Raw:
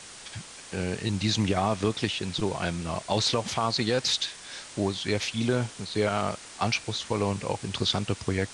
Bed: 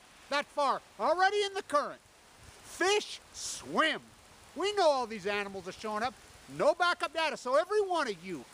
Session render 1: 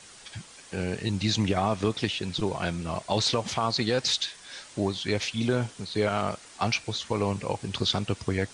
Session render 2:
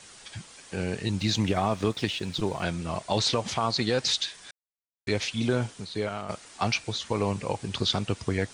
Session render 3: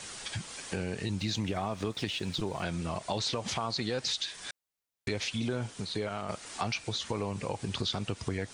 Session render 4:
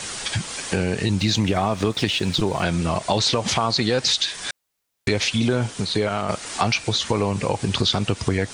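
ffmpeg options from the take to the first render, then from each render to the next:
-af "afftdn=nr=6:nf=-45"
-filter_complex "[0:a]asettb=1/sr,asplit=3[s0][s1][s2];[s0]atrim=end=1.194[s3];[s1]atrim=start=1.19:end=2.63,asetpts=PTS-STARTPTS,afade=t=in:d=0.004:c=qsin,afade=t=out:st=1.436:d=0.004:c=qsin,aeval=exprs='sgn(val(0))*max(abs(val(0))-0.00211,0)':c=same[s4];[s2]atrim=start=2.626[s5];[s3][s4]acrossfade=d=0.004:c1=hsin:c2=qsin[s6];[s6][s5]acrossfade=d=0.004:c1=qsin:c2=hsin,asplit=4[s7][s8][s9][s10];[s7]atrim=end=4.51,asetpts=PTS-STARTPTS,afade=t=out:st=4.506:d=0.004:c=hsin[s11];[s8]atrim=start=4.51:end=5.07,asetpts=PTS-STARTPTS,volume=0[s12];[s9]atrim=start=5.07:end=6.29,asetpts=PTS-STARTPTS,afade=t=in:d=0.004:c=hsin,afade=t=out:st=0.61:d=0.61:silence=0.298538[s13];[s10]atrim=start=6.29,asetpts=PTS-STARTPTS,afade=t=in:d=0.004:c=hsin:silence=0.298538[s14];[s11][s12][s13][s14]concat=n=4:v=0:a=1"
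-filter_complex "[0:a]asplit=2[s0][s1];[s1]alimiter=limit=0.0708:level=0:latency=1,volume=1[s2];[s0][s2]amix=inputs=2:normalize=0,acompressor=threshold=0.02:ratio=2.5"
-af "volume=3.98"

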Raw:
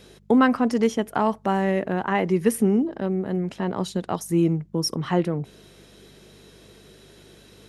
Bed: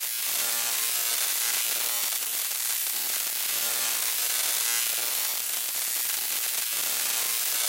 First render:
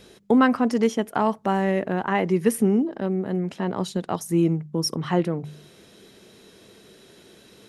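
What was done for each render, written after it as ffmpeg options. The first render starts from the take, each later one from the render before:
-af "bandreject=f=50:t=h:w=4,bandreject=f=100:t=h:w=4,bandreject=f=150:t=h:w=4"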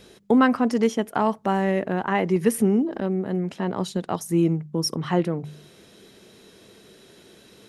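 -filter_complex "[0:a]asettb=1/sr,asplit=3[s0][s1][s2];[s0]atrim=end=2.364[s3];[s1]atrim=start=2.36:end=3.2,asetpts=PTS-STARTPTS,afade=t=in:d=0.004:c=qsin,afade=t=out:st=0.836:d=0.004:c=qsin,acompressor=mode=upward:threshold=0.0794:ratio=2.5:attack=3.2:release=140:knee=2.83:detection=peak[s4];[s2]atrim=start=3.196[s5];[s3][s4]acrossfade=d=0.004:c1=hsin:c2=qsin[s6];[s6][s5]acrossfade=d=0.004:c1=qsin:c2=hsin"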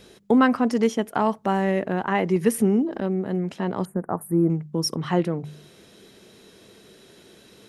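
-filter_complex "[0:a]asettb=1/sr,asplit=3[s0][s1][s2];[s0]atrim=end=3.854[s3];[s1]atrim=start=3.85:end=4.5,asetpts=PTS-STARTPTS,afade=t=in:d=0.004:c=qsin,afade=t=out:st=0.646:d=0.004:c=qsin,asuperstop=centerf=4300:order=8:qfactor=0.52[s4];[s2]atrim=start=4.496[s5];[s3][s4]acrossfade=d=0.004:c1=hsin:c2=qsin[s6];[s6][s5]acrossfade=d=0.004:c1=qsin:c2=hsin"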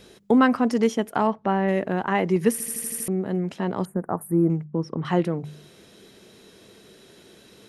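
-filter_complex "[0:a]asplit=3[s0][s1][s2];[s0]afade=t=out:st=1.26:d=0.02[s3];[s1]lowpass=3000,afade=t=in:st=1.26:d=0.02,afade=t=out:st=1.67:d=0.02[s4];[s2]afade=t=in:st=1.67:d=0.02[s5];[s3][s4][s5]amix=inputs=3:normalize=0,asettb=1/sr,asplit=3[s6][s7][s8];[s6]atrim=end=4.644[s9];[s7]atrim=start=4.64:end=5.05,asetpts=PTS-STARTPTS,afade=t=in:d=0.004:c=qsin,afade=t=out:st=0.406:d=0.004:c=qsin,lowpass=1700[s10];[s8]atrim=start=5.046[s11];[s9][s10]acrossfade=d=0.004:c1=hsin:c2=qsin[s12];[s12][s11]acrossfade=d=0.004:c1=qsin:c2=hsin,asplit=8[s13][s14][s15][s16][s17][s18][s19][s20];[s13]atrim=end=2.602[s21];[s14]atrim=start=2.518:end=2.602[s22];[s15]atrim=start=2.518:end=2.602[s23];[s16]atrim=start=2.518:end=2.602[s24];[s17]atrim=start=2.518:end=2.602[s25];[s18]atrim=start=2.518:end=2.602[s26];[s19]atrim=start=2.518:end=2.602[s27];[s20]atrim=start=3.078[s28];[s21][s22]acrossfade=d=0.004:c1=hsin:c2=hsin[s29];[s29][s23]acrossfade=d=0.004:c1=hsin:c2=hsin[s30];[s30][s24]acrossfade=d=0.004:c1=hsin:c2=hsin[s31];[s31][s25]acrossfade=d=0.004:c1=hsin:c2=hsin[s32];[s32][s26]acrossfade=d=0.004:c1=hsin:c2=hsin[s33];[s33][s27]acrossfade=d=0.004:c1=hsin:c2=hsin[s34];[s34][s28]acrossfade=d=0.004:c1=hsin:c2=hsin"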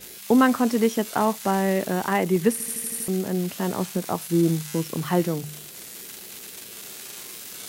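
-filter_complex "[1:a]volume=0.251[s0];[0:a][s0]amix=inputs=2:normalize=0"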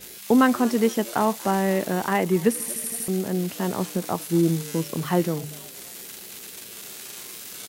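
-filter_complex "[0:a]asplit=4[s0][s1][s2][s3];[s1]adelay=237,afreqshift=120,volume=0.0708[s4];[s2]adelay=474,afreqshift=240,volume=0.0305[s5];[s3]adelay=711,afreqshift=360,volume=0.013[s6];[s0][s4][s5][s6]amix=inputs=4:normalize=0"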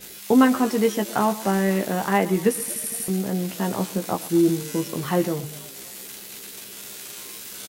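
-filter_complex "[0:a]asplit=2[s0][s1];[s1]adelay=15,volume=0.501[s2];[s0][s2]amix=inputs=2:normalize=0,aecho=1:1:121:0.133"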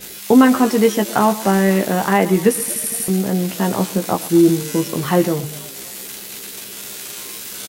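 -af "volume=2.11,alimiter=limit=0.794:level=0:latency=1"

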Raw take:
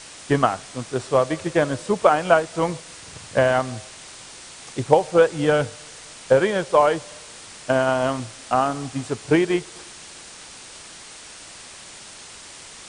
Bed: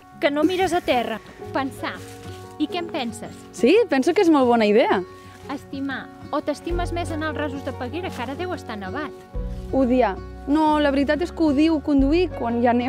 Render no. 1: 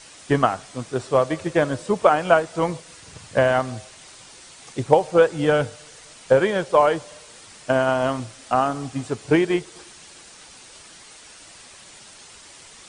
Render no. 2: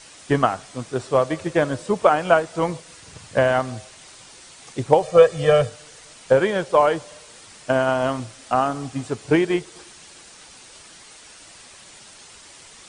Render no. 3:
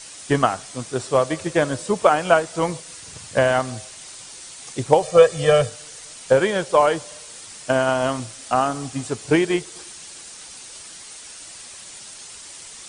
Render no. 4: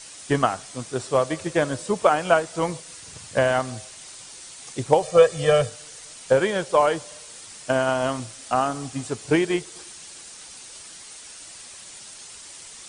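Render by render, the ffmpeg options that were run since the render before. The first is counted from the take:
-af "afftdn=nr=6:nf=-42"
-filter_complex "[0:a]asettb=1/sr,asplit=3[s0][s1][s2];[s0]atrim=end=5.024[s3];[s1]atrim=start=5.02:end=5.69,asetpts=PTS-STARTPTS,afade=t=in:d=0.004:c=qsin,afade=t=out:st=0.666:d=0.004:c=qsin,aecho=1:1:1.7:0.79,atrim=end_sample=29547[s4];[s2]atrim=start=5.686[s5];[s3][s4]acrossfade=d=0.004:c1=hsin:c2=qsin[s6];[s6][s5]acrossfade=d=0.004:c1=qsin:c2=hsin"
-af "highshelf=f=4800:g=10.5"
-af "volume=0.75"

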